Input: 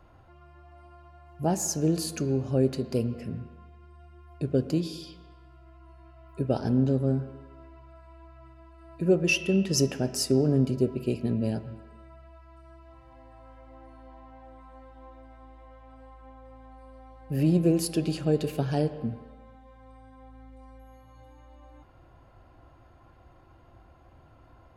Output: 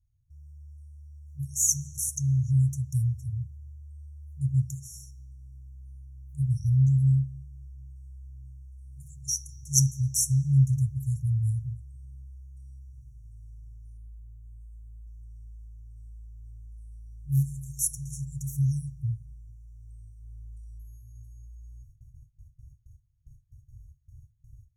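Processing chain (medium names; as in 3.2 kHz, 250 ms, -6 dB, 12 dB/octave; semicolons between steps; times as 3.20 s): gate with hold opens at -45 dBFS; FFT band-reject 140–5500 Hz; 13.97–15.07 s: static phaser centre 1.8 kHz, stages 4; trim +7.5 dB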